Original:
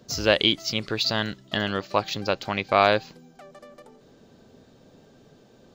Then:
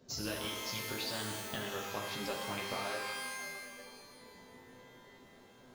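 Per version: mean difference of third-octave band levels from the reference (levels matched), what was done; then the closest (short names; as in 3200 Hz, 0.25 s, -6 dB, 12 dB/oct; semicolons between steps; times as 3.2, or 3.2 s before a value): 14.0 dB: compressor, threshold -29 dBFS, peak gain reduction 15.5 dB; chorus voices 4, 0.54 Hz, delay 12 ms, depth 4.4 ms; shimmer reverb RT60 1.3 s, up +12 st, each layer -2 dB, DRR 1.5 dB; gain -6 dB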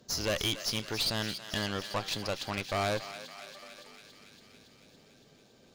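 9.0 dB: high shelf 2400 Hz +6.5 dB; tube stage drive 21 dB, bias 0.6; on a send: thinning echo 0.281 s, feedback 76%, high-pass 880 Hz, level -10.5 dB; on the sum: gain -4.5 dB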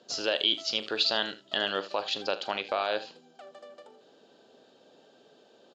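5.5 dB: limiter -14 dBFS, peak gain reduction 10 dB; speaker cabinet 440–7000 Hz, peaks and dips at 1100 Hz -5 dB, 2100 Hz -9 dB, 3100 Hz +4 dB, 5900 Hz -7 dB; early reflections 41 ms -14 dB, 78 ms -16 dB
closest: third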